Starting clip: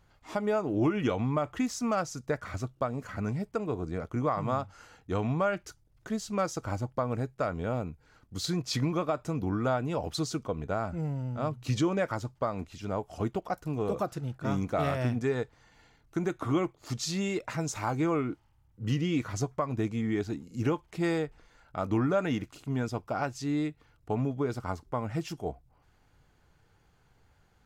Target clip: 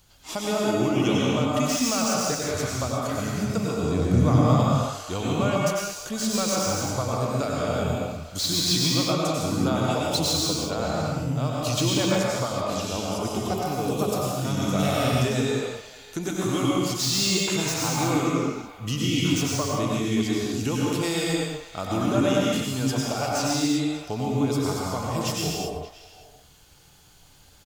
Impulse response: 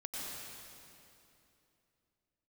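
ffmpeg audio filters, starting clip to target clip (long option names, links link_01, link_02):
-filter_complex "[0:a]aexciter=amount=3.2:drive=7.4:freq=2700,asplit=2[link_01][link_02];[link_02]acompressor=threshold=-35dB:ratio=6,volume=-1dB[link_03];[link_01][link_03]amix=inputs=2:normalize=0,asettb=1/sr,asplit=3[link_04][link_05][link_06];[link_04]atrim=end=3.834[link_07];[link_05]atrim=start=3.83:end=4.53,asetpts=PTS-STARTPTS,afade=type=in:duration=0.004:curve=qsin,afade=type=out:start_time=0.696:duration=0.004:curve=qsin,equalizer=frequency=130:width=0.63:gain=12[link_08];[link_06]atrim=start=4.526[link_09];[link_07][link_08]acrossfade=duration=0.004:curve1=hsin:curve2=qsin[link_10];[link_10][link_09]acrossfade=duration=0.004:curve1=qsin:curve2=hsin,acrossover=split=480|5700[link_11][link_12][link_13];[link_12]aecho=1:1:120|578:0.299|0.168[link_14];[link_13]aeval=exprs='0.0422*(abs(mod(val(0)/0.0422+3,4)-2)-1)':channel_layout=same[link_15];[link_11][link_14][link_15]amix=inputs=3:normalize=0[link_16];[1:a]atrim=start_sample=2205,afade=type=out:start_time=0.43:duration=0.01,atrim=end_sample=19404[link_17];[link_16][link_17]afir=irnorm=-1:irlink=0,volume=2.5dB"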